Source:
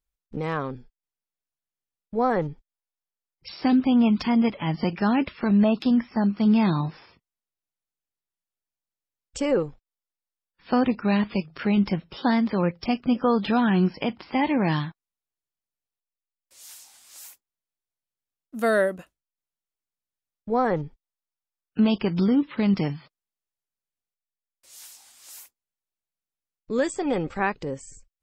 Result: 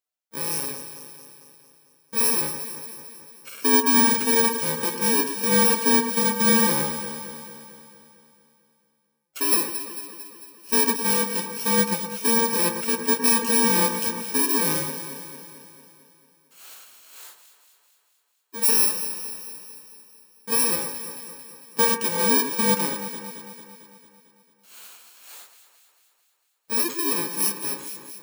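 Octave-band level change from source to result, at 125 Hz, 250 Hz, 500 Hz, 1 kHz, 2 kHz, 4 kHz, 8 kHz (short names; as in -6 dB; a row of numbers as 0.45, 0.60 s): -8.0 dB, -5.5 dB, -1.0 dB, +1.5 dB, +4.5 dB, +9.5 dB, n/a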